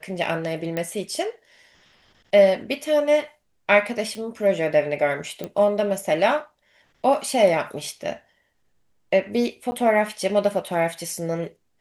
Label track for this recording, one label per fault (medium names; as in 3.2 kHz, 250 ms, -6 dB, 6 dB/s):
0.770000	0.770000	pop -13 dBFS
4.150000	4.150000	pop -22 dBFS
5.440000	5.440000	pop -16 dBFS
9.710000	9.720000	dropout 10 ms